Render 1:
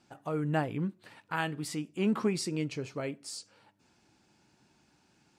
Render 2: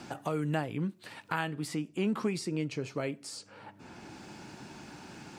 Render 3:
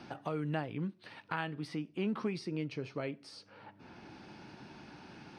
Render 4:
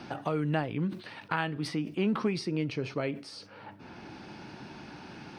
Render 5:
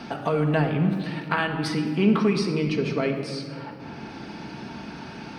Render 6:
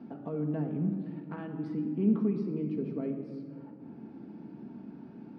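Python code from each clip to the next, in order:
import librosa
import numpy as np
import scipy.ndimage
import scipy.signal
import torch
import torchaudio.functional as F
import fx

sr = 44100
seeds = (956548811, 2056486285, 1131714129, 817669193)

y1 = fx.band_squash(x, sr, depth_pct=70)
y2 = scipy.signal.savgol_filter(y1, 15, 4, mode='constant')
y2 = y2 * 10.0 ** (-4.0 / 20.0)
y3 = fx.sustainer(y2, sr, db_per_s=130.0)
y3 = y3 * 10.0 ** (6.0 / 20.0)
y4 = fx.room_shoebox(y3, sr, seeds[0], volume_m3=3600.0, walls='mixed', distance_m=1.6)
y4 = y4 * 10.0 ** (5.5 / 20.0)
y5 = fx.bandpass_q(y4, sr, hz=250.0, q=1.7)
y5 = y5 * 10.0 ** (-4.5 / 20.0)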